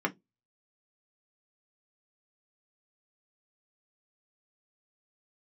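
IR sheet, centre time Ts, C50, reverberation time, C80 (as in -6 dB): 6 ms, 24.0 dB, 0.15 s, 36.0 dB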